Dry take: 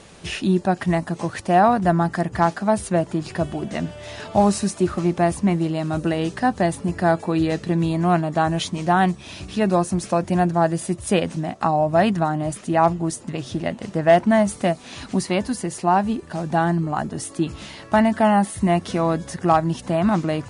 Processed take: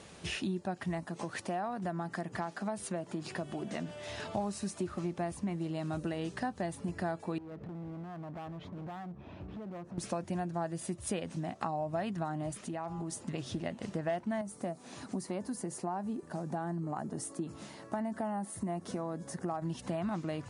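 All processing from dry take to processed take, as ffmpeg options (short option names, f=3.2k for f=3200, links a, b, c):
-filter_complex "[0:a]asettb=1/sr,asplit=3[a][b][c];[a]atrim=end=1.054[d];[b]atrim=start=1.05:end=4.08,asetpts=PTS-STARTPTS,afade=t=in:d=0.004:c=qsin,afade=t=out:st=3.026:d=0.004:c=qsin,highpass=150,acompressor=threshold=-28dB:ratio=1.5:attack=3.2:release=140:knee=1:detection=peak[e];[c]atrim=start=4.076[f];[d][e]acrossfade=d=0.004:c1=hsin:c2=qsin[g];[g][f]acrossfade=d=0.004:c1=qsin:c2=hsin,asettb=1/sr,asplit=3[h][i][j];[h]atrim=end=7.384[k];[i]atrim=start=7.38:end=9.98,asetpts=PTS-STARTPTS,afade=t=in:d=0.004:c=qsin,afade=t=out:st=2.596:d=0.004:c=qsin,lowpass=1.1k,acompressor=threshold=-29dB:ratio=16:attack=3.2:release=140:knee=1:detection=peak,asoftclip=type=hard:threshold=-33dB[l];[j]atrim=start=9.976[m];[k][l]acrossfade=d=0.004:c1=hsin:c2=qsin[n];[n][m]acrossfade=d=0.004:c1=qsin:c2=hsin,asettb=1/sr,asplit=3[o][p][q];[o]atrim=end=12.584[r];[p]atrim=start=12.58:end=13.21,asetpts=PTS-STARTPTS,afade=t=in:d=0.004:c=qsin,afade=t=out:st=0.626:d=0.004:c=qsin,bandreject=f=91.23:t=h:w=4,bandreject=f=182.46:t=h:w=4,bandreject=f=273.69:t=h:w=4,bandreject=f=364.92:t=h:w=4,bandreject=f=456.15:t=h:w=4,bandreject=f=547.38:t=h:w=4,bandreject=f=638.61:t=h:w=4,bandreject=f=729.84:t=h:w=4,bandreject=f=821.07:t=h:w=4,bandreject=f=912.3:t=h:w=4,bandreject=f=1.00353k:t=h:w=4,bandreject=f=1.09476k:t=h:w=4,bandreject=f=1.18599k:t=h:w=4,bandreject=f=1.27722k:t=h:w=4,bandreject=f=1.36845k:t=h:w=4,bandreject=f=1.45968k:t=h:w=4,bandreject=f=1.55091k:t=h:w=4,bandreject=f=1.64214k:t=h:w=4,bandreject=f=1.73337k:t=h:w=4,acompressor=threshold=-27dB:ratio=10:attack=3.2:release=140:knee=1:detection=peak[s];[q]atrim=start=13.206[t];[r][s]acrossfade=d=0.004:c1=hsin:c2=qsin[u];[u][t]acrossfade=d=0.004:c1=qsin:c2=hsin,asettb=1/sr,asplit=3[v][w][x];[v]atrim=end=14.414[y];[w]atrim=start=14.41:end=19.62,asetpts=PTS-STARTPTS,afade=t=in:d=0.004:c=qsin,afade=t=out:st=5.206:d=0.004:c=qsin,highpass=140,equalizer=f=3k:w=0.78:g=-11,acompressor=threshold=-25dB:ratio=1.5:attack=3.2:release=140:knee=1:detection=peak[z];[x]atrim=start=19.616[aa];[y][z]acrossfade=d=0.004:c1=hsin:c2=qsin[ab];[ab][aa]acrossfade=d=0.004:c1=qsin:c2=hsin,acompressor=threshold=-27dB:ratio=4,highpass=54,volume=-6.5dB"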